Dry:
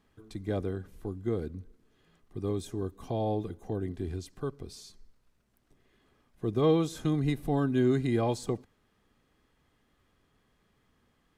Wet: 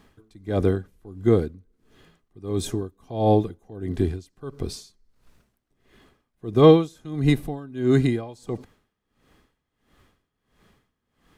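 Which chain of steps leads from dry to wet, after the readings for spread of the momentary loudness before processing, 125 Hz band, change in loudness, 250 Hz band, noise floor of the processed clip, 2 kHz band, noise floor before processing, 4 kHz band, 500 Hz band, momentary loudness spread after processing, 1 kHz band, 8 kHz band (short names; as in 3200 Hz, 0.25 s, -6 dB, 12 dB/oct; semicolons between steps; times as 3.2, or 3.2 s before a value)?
15 LU, +7.5 dB, +8.0 dB, +7.0 dB, -79 dBFS, +7.0 dB, -72 dBFS, +8.5 dB, +9.0 dB, 18 LU, +8.0 dB, +6.0 dB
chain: in parallel at -2 dB: vocal rider within 4 dB 2 s; on the sum: dB-linear tremolo 1.5 Hz, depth 23 dB; gain +7 dB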